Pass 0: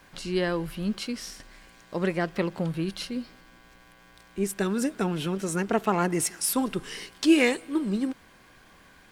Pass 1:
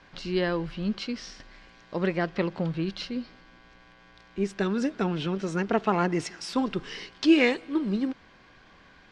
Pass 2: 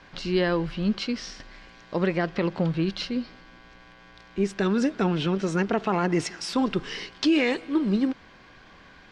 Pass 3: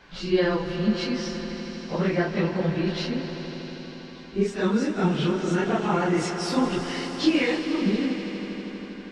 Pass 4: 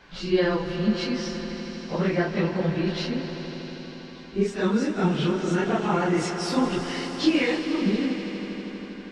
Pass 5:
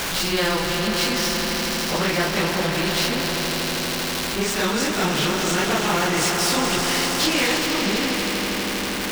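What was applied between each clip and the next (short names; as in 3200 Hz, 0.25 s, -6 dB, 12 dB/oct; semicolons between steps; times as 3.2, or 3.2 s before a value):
LPF 5400 Hz 24 dB/oct
limiter -18 dBFS, peak gain reduction 8.5 dB; gain +4 dB
phase scrambler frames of 0.1 s; on a send: swelling echo 80 ms, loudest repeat 5, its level -15 dB
nothing audible
zero-crossing step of -35.5 dBFS; spectral compressor 2:1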